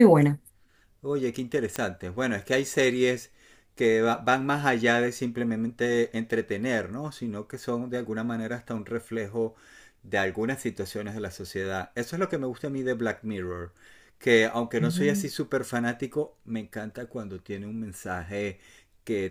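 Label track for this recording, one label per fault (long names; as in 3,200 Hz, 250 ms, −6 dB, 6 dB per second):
1.760000	1.760000	click −13 dBFS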